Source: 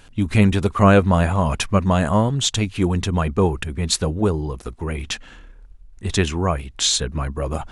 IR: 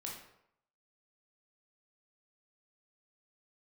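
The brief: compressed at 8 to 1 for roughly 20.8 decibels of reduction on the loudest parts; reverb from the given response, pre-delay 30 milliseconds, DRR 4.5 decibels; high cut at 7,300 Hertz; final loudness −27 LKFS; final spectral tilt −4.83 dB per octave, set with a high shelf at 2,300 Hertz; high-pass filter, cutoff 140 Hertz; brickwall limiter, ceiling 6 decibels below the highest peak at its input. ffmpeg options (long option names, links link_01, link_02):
-filter_complex "[0:a]highpass=140,lowpass=7300,highshelf=frequency=2300:gain=-5,acompressor=threshold=-31dB:ratio=8,alimiter=level_in=0.5dB:limit=-24dB:level=0:latency=1,volume=-0.5dB,asplit=2[link_01][link_02];[1:a]atrim=start_sample=2205,adelay=30[link_03];[link_02][link_03]afir=irnorm=-1:irlink=0,volume=-3dB[link_04];[link_01][link_04]amix=inputs=2:normalize=0,volume=8.5dB"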